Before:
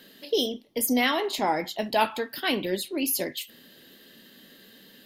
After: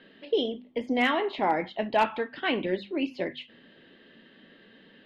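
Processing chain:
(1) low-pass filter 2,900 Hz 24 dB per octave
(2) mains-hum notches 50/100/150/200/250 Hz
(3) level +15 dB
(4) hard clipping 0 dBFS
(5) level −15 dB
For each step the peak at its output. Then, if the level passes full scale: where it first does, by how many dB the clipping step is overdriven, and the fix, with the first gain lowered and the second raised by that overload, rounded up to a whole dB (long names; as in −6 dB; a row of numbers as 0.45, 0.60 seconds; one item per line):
−10.5, −10.5, +4.5, 0.0, −15.0 dBFS
step 3, 4.5 dB
step 3 +10 dB, step 5 −10 dB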